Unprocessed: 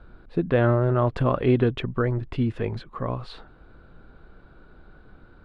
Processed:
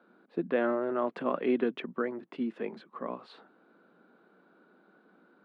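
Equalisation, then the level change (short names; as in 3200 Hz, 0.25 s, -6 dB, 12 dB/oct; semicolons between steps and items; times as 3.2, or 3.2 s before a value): steep high-pass 190 Hz 48 dB/oct; dynamic EQ 2200 Hz, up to +4 dB, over -41 dBFS, Q 1.4; high shelf 3500 Hz -8 dB; -6.5 dB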